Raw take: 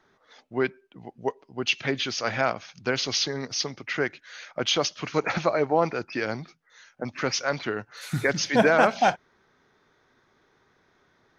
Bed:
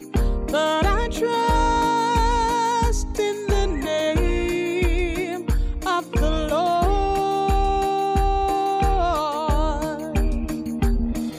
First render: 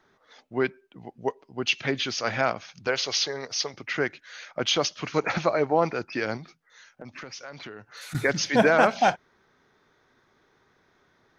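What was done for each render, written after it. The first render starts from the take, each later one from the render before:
0:02.87–0:03.74: low shelf with overshoot 360 Hz −8 dB, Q 1.5
0:06.37–0:08.15: downward compressor, threshold −37 dBFS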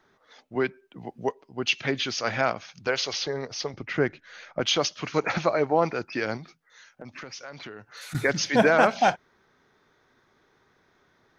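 0:00.55–0:01.29: multiband upward and downward compressor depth 40%
0:03.13–0:04.61: spectral tilt −2.5 dB per octave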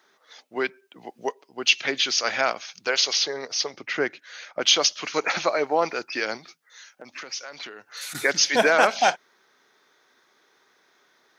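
high-pass filter 320 Hz 12 dB per octave
high-shelf EQ 2,600 Hz +10.5 dB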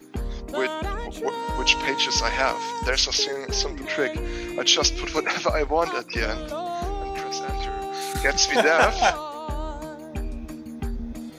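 mix in bed −9.5 dB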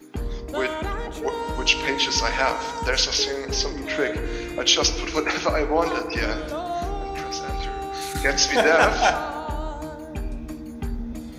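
feedback delay network reverb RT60 1.6 s, low-frequency decay 1.5×, high-frequency decay 0.35×, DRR 7.5 dB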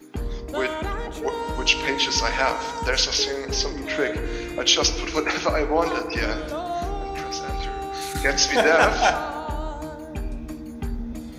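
no processing that can be heard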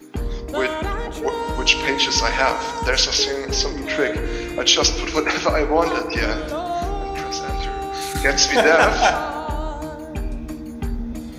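level +3.5 dB
brickwall limiter −2 dBFS, peak gain reduction 2 dB

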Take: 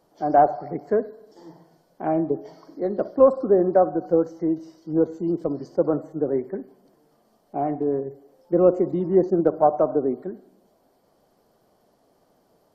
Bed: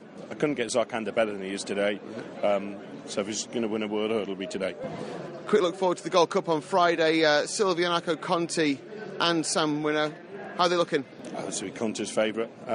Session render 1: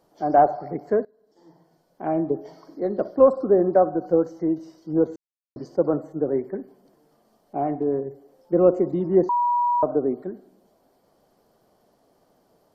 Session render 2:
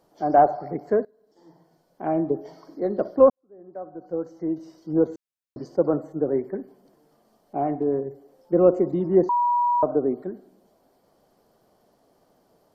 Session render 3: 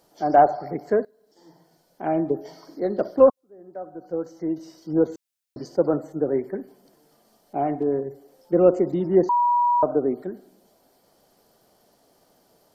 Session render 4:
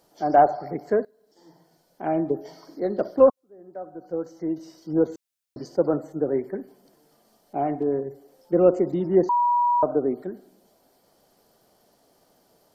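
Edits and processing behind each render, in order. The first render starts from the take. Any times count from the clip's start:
0:01.05–0:02.32: fade in, from −22 dB; 0:05.16–0:05.56: silence; 0:09.29–0:09.83: beep over 966 Hz −18 dBFS
0:03.30–0:04.76: fade in quadratic
high-shelf EQ 2,000 Hz +9.5 dB; notch filter 1,100 Hz, Q 17
level −1 dB

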